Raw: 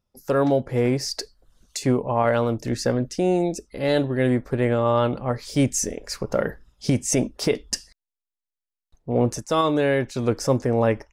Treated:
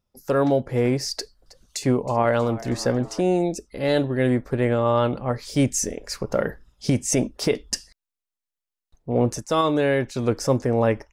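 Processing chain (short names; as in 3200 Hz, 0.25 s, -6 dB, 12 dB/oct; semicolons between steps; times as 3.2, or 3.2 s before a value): 1.14–3.21 frequency-shifting echo 0.319 s, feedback 62%, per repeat +99 Hz, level -19 dB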